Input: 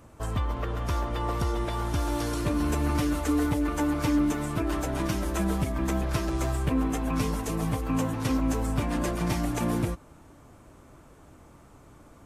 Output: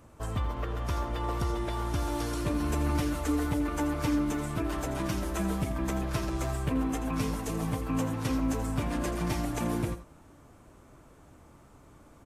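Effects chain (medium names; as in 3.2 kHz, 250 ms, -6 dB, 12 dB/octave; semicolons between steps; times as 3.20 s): delay 83 ms -12 dB; trim -3 dB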